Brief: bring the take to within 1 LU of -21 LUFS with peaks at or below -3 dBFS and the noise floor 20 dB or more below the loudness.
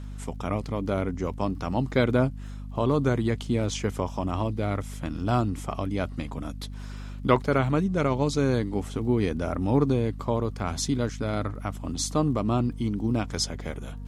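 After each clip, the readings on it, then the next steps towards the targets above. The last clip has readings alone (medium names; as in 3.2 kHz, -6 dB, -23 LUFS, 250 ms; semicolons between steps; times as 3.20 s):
tick rate 31 per s; hum 50 Hz; highest harmonic 250 Hz; hum level -34 dBFS; loudness -27.5 LUFS; peak level -6.0 dBFS; loudness target -21.0 LUFS
-> de-click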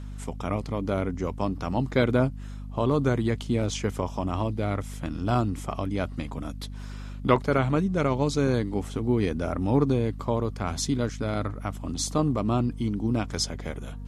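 tick rate 0 per s; hum 50 Hz; highest harmonic 250 Hz; hum level -34 dBFS
-> hum notches 50/100/150/200/250 Hz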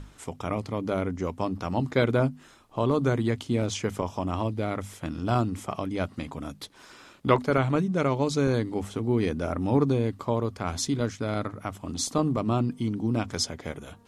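hum not found; loudness -28.0 LUFS; peak level -6.0 dBFS; loudness target -21.0 LUFS
-> trim +7 dB; peak limiter -3 dBFS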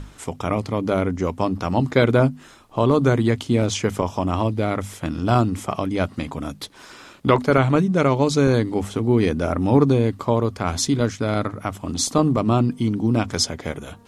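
loudness -21.0 LUFS; peak level -3.0 dBFS; noise floor -46 dBFS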